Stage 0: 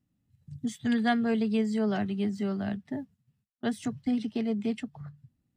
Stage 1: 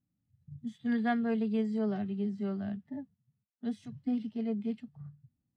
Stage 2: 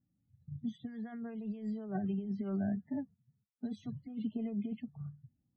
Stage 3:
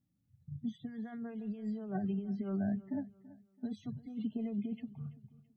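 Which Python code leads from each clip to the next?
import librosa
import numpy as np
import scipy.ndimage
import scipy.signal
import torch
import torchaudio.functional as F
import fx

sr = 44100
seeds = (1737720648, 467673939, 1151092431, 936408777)

y1 = fx.dynamic_eq(x, sr, hz=3500.0, q=0.73, threshold_db=-53.0, ratio=4.0, max_db=7)
y1 = fx.hpss(y1, sr, part='percussive', gain_db=-15)
y1 = fx.high_shelf(y1, sr, hz=2400.0, db=-10.0)
y1 = F.gain(torch.from_numpy(y1), -3.5).numpy()
y2 = fx.over_compress(y1, sr, threshold_db=-35.0, ratio=-0.5)
y2 = fx.spec_topn(y2, sr, count=32)
y2 = F.gain(torch.from_numpy(y2), -1.0).numpy()
y3 = fx.echo_feedback(y2, sr, ms=332, feedback_pct=35, wet_db=-19.0)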